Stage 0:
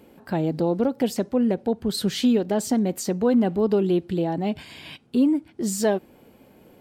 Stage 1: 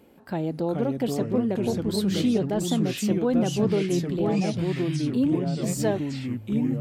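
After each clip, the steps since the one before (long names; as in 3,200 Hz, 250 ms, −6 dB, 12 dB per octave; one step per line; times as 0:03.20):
delay with pitch and tempo change per echo 365 ms, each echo −3 semitones, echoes 3
level −4 dB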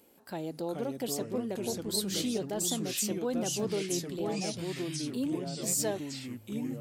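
bass and treble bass −7 dB, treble +13 dB
level −7 dB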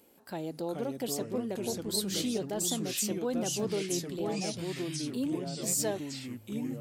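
no processing that can be heard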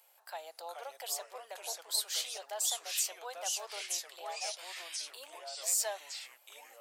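Butterworth high-pass 650 Hz 36 dB per octave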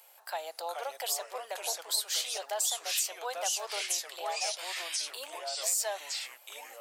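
downward compressor 2.5 to 1, threshold −37 dBFS, peak gain reduction 7.5 dB
level +7.5 dB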